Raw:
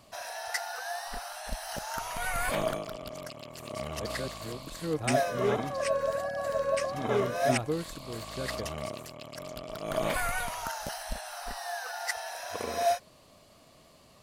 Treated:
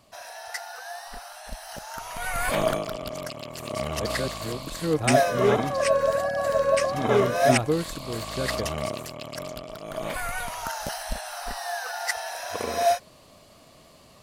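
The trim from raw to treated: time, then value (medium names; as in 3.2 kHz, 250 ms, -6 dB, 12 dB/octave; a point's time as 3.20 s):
1.96 s -1.5 dB
2.71 s +7 dB
9.40 s +7 dB
9.93 s -3 dB
10.83 s +5 dB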